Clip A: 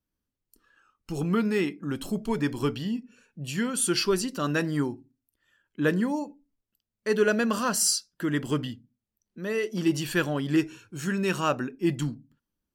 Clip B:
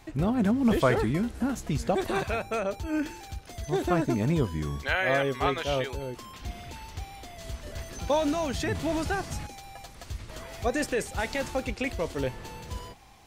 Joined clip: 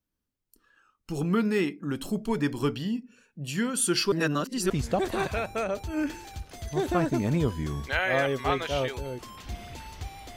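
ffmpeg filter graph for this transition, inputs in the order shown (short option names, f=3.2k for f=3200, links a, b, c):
-filter_complex "[0:a]apad=whole_dur=10.36,atrim=end=10.36,asplit=2[a][b];[a]atrim=end=4.122[c];[b]atrim=start=4.118:end=4.702,asetpts=PTS-STARTPTS,areverse[d];[1:a]atrim=start=1.658:end=7.32[e];[c][d]acrossfade=d=0.004:c1=hsin:c2=hsin[f];[f][e]acrossfade=d=0.004:c1=hsin:c2=hsin"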